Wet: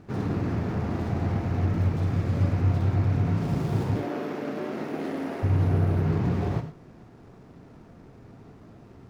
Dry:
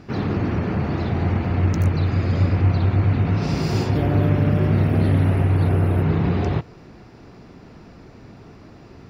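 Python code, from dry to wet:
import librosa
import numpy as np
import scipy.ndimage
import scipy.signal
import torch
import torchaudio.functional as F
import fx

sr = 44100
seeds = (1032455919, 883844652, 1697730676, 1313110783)

y = scipy.signal.medfilt(x, 15)
y = fx.highpass(y, sr, hz=260.0, slope=24, at=(3.96, 5.43))
y = fx.rev_gated(y, sr, seeds[0], gate_ms=130, shape='flat', drr_db=7.0)
y = F.gain(torch.from_numpy(y), -6.0).numpy()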